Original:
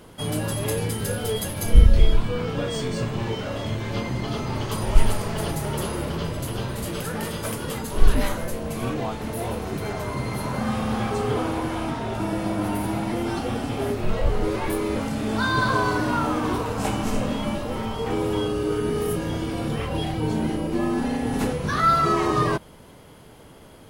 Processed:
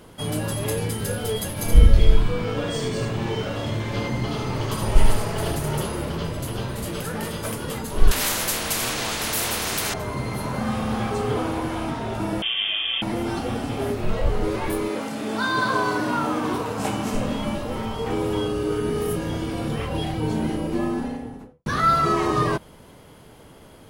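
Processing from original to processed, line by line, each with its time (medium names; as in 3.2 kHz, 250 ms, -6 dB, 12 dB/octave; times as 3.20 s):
1.51–5.82 s: delay 75 ms -4 dB
8.11–9.94 s: spectrum-flattening compressor 4:1
12.42–13.02 s: frequency inversion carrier 3.4 kHz
14.88–17.13 s: high-pass 270 Hz -> 94 Hz
20.69–21.66 s: studio fade out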